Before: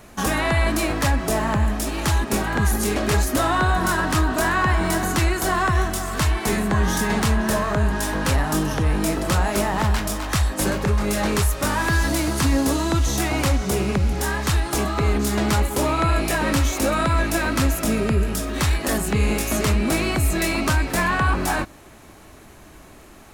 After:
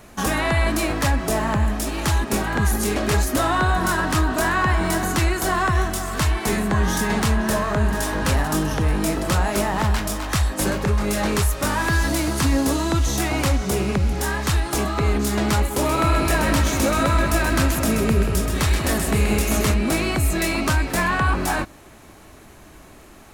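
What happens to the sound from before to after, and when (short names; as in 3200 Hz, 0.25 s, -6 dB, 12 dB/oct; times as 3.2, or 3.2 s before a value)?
7.31–8.03 echo throw 0.44 s, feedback 50%, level -11.5 dB
15.72–19.74 split-band echo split 1400 Hz, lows 0.182 s, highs 0.129 s, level -6 dB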